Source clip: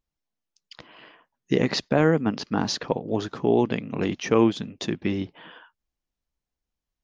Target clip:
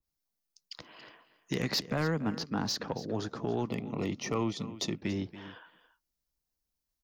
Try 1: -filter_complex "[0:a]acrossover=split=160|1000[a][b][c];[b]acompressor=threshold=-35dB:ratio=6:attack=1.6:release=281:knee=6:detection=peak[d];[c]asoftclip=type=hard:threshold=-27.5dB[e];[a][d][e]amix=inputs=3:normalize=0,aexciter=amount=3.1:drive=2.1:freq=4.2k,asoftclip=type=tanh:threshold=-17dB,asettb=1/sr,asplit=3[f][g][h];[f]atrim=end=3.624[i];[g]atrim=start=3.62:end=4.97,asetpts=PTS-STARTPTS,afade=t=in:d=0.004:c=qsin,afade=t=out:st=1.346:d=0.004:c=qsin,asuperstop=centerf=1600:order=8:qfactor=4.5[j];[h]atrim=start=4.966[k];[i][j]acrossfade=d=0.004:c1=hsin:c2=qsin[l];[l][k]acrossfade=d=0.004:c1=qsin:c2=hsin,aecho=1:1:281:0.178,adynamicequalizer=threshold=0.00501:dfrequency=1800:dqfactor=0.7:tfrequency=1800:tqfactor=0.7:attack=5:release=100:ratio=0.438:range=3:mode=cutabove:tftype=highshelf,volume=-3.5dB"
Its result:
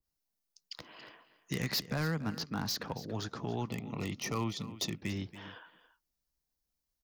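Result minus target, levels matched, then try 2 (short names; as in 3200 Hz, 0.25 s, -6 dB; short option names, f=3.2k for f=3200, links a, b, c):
compressor: peak gain reduction +9 dB; hard clip: distortion +12 dB
-filter_complex "[0:a]acrossover=split=160|1000[a][b][c];[b]acompressor=threshold=-24dB:ratio=6:attack=1.6:release=281:knee=6:detection=peak[d];[c]asoftclip=type=hard:threshold=-20dB[e];[a][d][e]amix=inputs=3:normalize=0,aexciter=amount=3.1:drive=2.1:freq=4.2k,asoftclip=type=tanh:threshold=-17dB,asettb=1/sr,asplit=3[f][g][h];[f]atrim=end=3.624[i];[g]atrim=start=3.62:end=4.97,asetpts=PTS-STARTPTS,afade=t=in:d=0.004:c=qsin,afade=t=out:st=1.346:d=0.004:c=qsin,asuperstop=centerf=1600:order=8:qfactor=4.5[j];[h]atrim=start=4.966[k];[i][j]acrossfade=d=0.004:c1=hsin:c2=qsin[l];[l][k]acrossfade=d=0.004:c1=qsin:c2=hsin,aecho=1:1:281:0.178,adynamicequalizer=threshold=0.00501:dfrequency=1800:dqfactor=0.7:tfrequency=1800:tqfactor=0.7:attack=5:release=100:ratio=0.438:range=3:mode=cutabove:tftype=highshelf,volume=-3.5dB"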